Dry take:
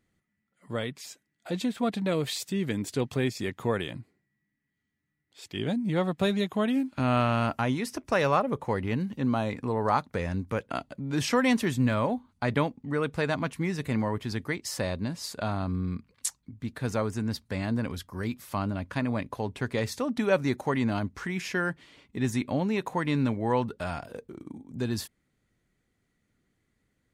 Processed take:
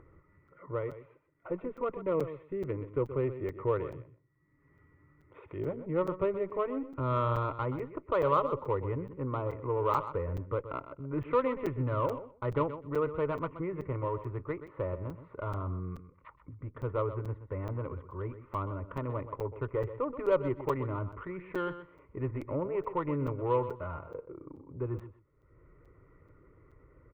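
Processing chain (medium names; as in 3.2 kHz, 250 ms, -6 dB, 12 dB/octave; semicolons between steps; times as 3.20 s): steep low-pass 1.7 kHz 36 dB/octave; band-stop 860 Hz, Q 23; Chebyshev shaper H 8 -30 dB, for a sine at -11 dBFS; static phaser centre 1.1 kHz, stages 8; upward compressor, threshold -41 dBFS; on a send: feedback delay 126 ms, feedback 16%, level -12 dB; on the sum: crackling interface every 0.43 s, samples 256, zero, from 0.48 s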